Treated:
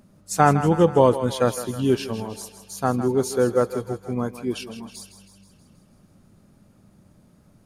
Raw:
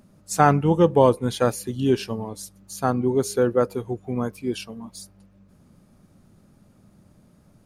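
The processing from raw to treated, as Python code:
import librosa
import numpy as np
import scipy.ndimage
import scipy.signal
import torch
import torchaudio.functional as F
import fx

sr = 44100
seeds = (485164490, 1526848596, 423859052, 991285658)

y = x + fx.echo_thinned(x, sr, ms=160, feedback_pct=60, hz=440.0, wet_db=-11, dry=0)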